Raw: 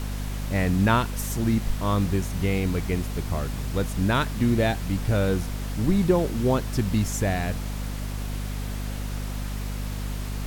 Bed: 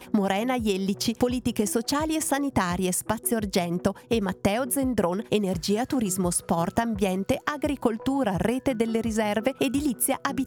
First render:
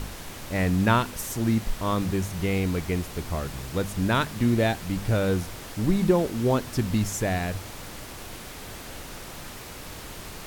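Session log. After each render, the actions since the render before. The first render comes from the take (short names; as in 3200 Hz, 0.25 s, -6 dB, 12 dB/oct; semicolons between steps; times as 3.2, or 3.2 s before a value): de-hum 50 Hz, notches 5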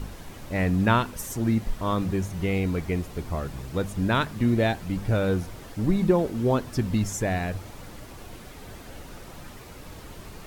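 denoiser 8 dB, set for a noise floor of -40 dBFS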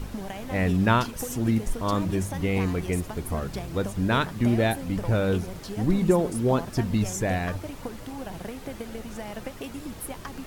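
add bed -12.5 dB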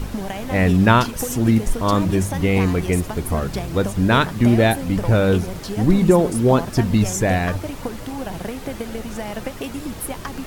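gain +7.5 dB; limiter -2 dBFS, peak gain reduction 1.5 dB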